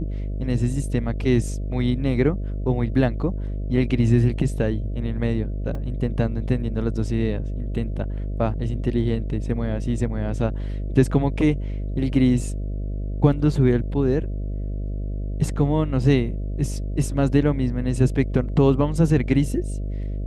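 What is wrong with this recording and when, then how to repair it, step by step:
buzz 50 Hz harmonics 13 -27 dBFS
5.75 gap 2.6 ms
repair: de-hum 50 Hz, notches 13; interpolate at 5.75, 2.6 ms

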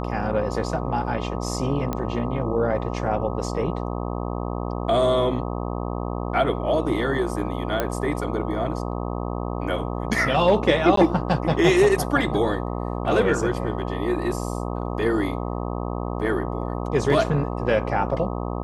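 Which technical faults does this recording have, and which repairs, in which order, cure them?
buzz 60 Hz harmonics 21 -28 dBFS
1.93 pop -13 dBFS
7.8 pop -9 dBFS
10.96–10.97 gap 13 ms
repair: de-click; de-hum 60 Hz, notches 21; interpolate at 10.96, 13 ms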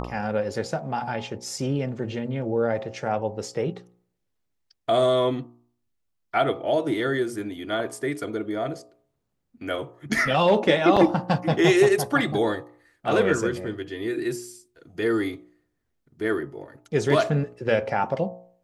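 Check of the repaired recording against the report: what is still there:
none

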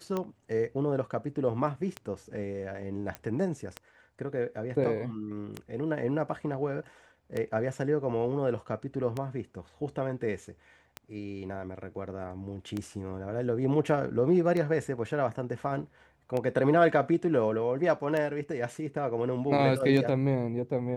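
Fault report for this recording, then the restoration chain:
tick 33 1/3 rpm -19 dBFS
3.15 pop -21 dBFS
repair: de-click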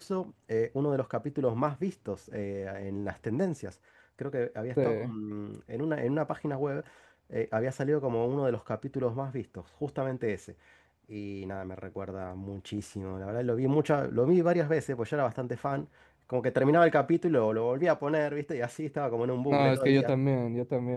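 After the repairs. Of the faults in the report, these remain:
none

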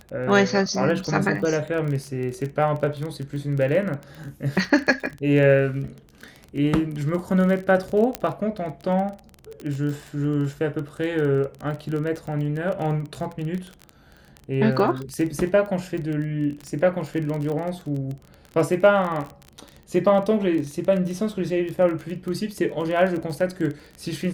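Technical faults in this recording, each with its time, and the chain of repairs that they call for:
crackle 22/s -28 dBFS
8.15 pop -8 dBFS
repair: de-click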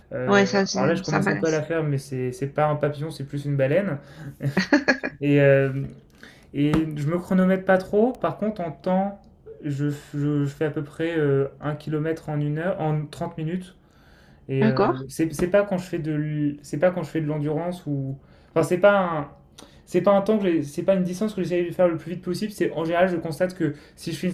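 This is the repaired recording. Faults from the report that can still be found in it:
8.15 pop

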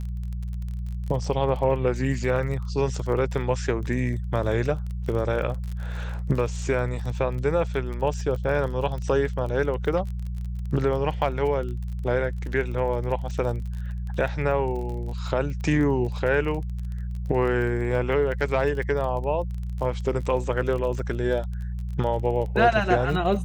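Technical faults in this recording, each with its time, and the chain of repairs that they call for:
crackle 26/s -32 dBFS
hum 60 Hz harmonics 3 -30 dBFS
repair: de-click; de-hum 60 Hz, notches 3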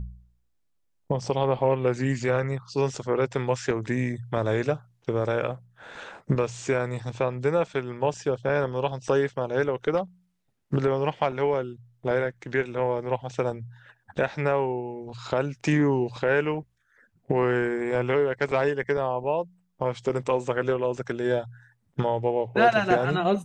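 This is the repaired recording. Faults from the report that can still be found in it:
none

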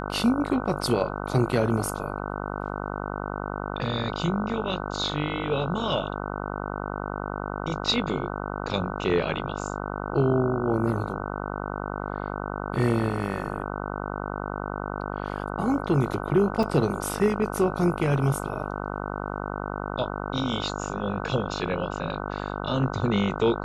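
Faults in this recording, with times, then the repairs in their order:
buzz 50 Hz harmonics 30 -32 dBFS
16.63 gap 2.2 ms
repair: de-hum 50 Hz, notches 30; interpolate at 16.63, 2.2 ms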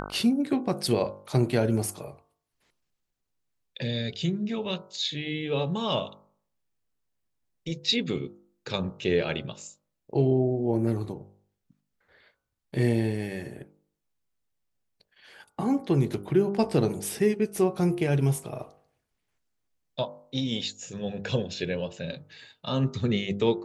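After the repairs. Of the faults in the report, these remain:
none

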